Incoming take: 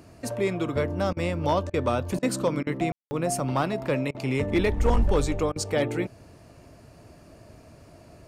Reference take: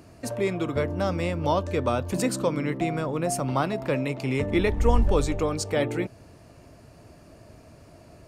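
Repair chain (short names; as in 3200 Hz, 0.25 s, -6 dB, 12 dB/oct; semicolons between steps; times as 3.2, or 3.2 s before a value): clip repair -15 dBFS; room tone fill 2.92–3.11; interpolate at 1.13/1.7/2.19/2.63/4.11/5.52, 36 ms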